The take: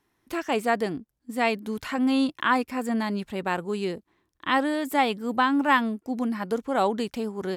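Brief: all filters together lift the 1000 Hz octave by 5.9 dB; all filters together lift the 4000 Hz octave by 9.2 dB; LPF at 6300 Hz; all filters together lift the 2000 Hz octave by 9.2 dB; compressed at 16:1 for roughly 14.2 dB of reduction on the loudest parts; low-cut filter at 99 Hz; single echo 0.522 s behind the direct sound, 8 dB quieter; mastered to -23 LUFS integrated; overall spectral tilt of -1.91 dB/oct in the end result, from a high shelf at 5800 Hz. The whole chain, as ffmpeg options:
-af "highpass=99,lowpass=6.3k,equalizer=f=1k:t=o:g=5,equalizer=f=2k:t=o:g=7.5,equalizer=f=4k:t=o:g=6.5,highshelf=f=5.8k:g=8,acompressor=threshold=-23dB:ratio=16,aecho=1:1:522:0.398,volume=5.5dB"

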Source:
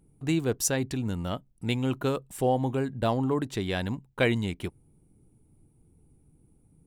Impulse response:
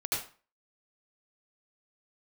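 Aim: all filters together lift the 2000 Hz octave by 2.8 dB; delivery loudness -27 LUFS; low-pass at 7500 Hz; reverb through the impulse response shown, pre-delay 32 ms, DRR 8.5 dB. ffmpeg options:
-filter_complex "[0:a]lowpass=7.5k,equalizer=f=2k:t=o:g=3.5,asplit=2[a][b];[1:a]atrim=start_sample=2205,adelay=32[c];[b][c]afir=irnorm=-1:irlink=0,volume=-14.5dB[d];[a][d]amix=inputs=2:normalize=0,volume=1.5dB"

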